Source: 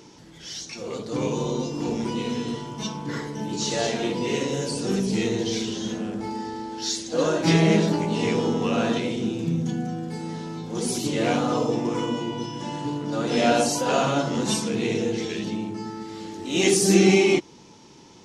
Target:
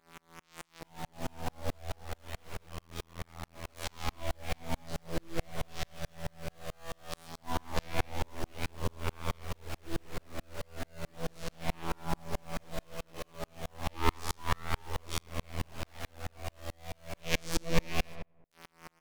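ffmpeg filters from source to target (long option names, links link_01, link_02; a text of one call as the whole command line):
ffmpeg -i in.wav -filter_complex "[0:a]lowshelf=frequency=89:gain=-5,bandreject=frequency=850:width=12,acrossover=split=170[link_01][link_02];[link_02]acompressor=mode=upward:threshold=-30dB:ratio=2.5[link_03];[link_01][link_03]amix=inputs=2:normalize=0,afftfilt=real='hypot(re,im)*cos(PI*b)':imag='0':win_size=2048:overlap=0.75,adynamicsmooth=sensitivity=2:basefreq=1700,acrusher=bits=5:mix=0:aa=0.000001,flanger=delay=16.5:depth=5.9:speed=0.17,aeval=exprs='abs(val(0))':channel_layout=same,asplit=2[link_04][link_05];[link_05]adelay=92,lowpass=frequency=1800:poles=1,volume=-10dB,asplit=2[link_06][link_07];[link_07]adelay=92,lowpass=frequency=1800:poles=1,volume=0.39,asplit=2[link_08][link_09];[link_09]adelay=92,lowpass=frequency=1800:poles=1,volume=0.39,asplit=2[link_10][link_11];[link_11]adelay=92,lowpass=frequency=1800:poles=1,volume=0.39[link_12];[link_04][link_06][link_08][link_10][link_12]amix=inputs=5:normalize=0,asetrate=42336,aresample=44100,aeval=exprs='val(0)*pow(10,-38*if(lt(mod(-4.6*n/s,1),2*abs(-4.6)/1000),1-mod(-4.6*n/s,1)/(2*abs(-4.6)/1000),(mod(-4.6*n/s,1)-2*abs(-4.6)/1000)/(1-2*abs(-4.6)/1000))/20)':channel_layout=same,volume=4.5dB" out.wav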